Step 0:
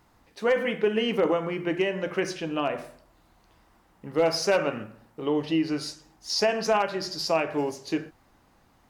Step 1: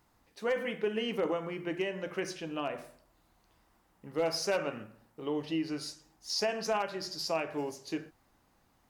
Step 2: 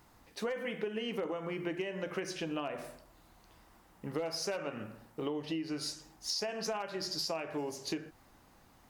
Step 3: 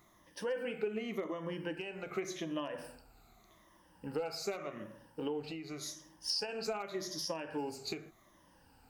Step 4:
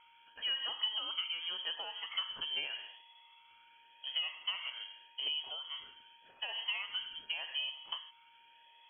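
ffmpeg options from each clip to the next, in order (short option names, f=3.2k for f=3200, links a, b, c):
-af "highshelf=f=6.2k:g=6,volume=-8dB"
-af "acompressor=threshold=-40dB:ratio=12,volume=7dB"
-af "afftfilt=real='re*pow(10,13/40*sin(2*PI*(1.2*log(max(b,1)*sr/1024/100)/log(2)-(-0.86)*(pts-256)/sr)))':imag='im*pow(10,13/40*sin(2*PI*(1.2*log(max(b,1)*sr/1024/100)/log(2)-(-0.86)*(pts-256)/sr)))':win_size=1024:overlap=0.75,volume=-4dB"
-af "lowpass=f=2.9k:t=q:w=0.5098,lowpass=f=2.9k:t=q:w=0.6013,lowpass=f=2.9k:t=q:w=0.9,lowpass=f=2.9k:t=q:w=2.563,afreqshift=-3400,aeval=exprs='val(0)+0.000708*sin(2*PI*930*n/s)':c=same"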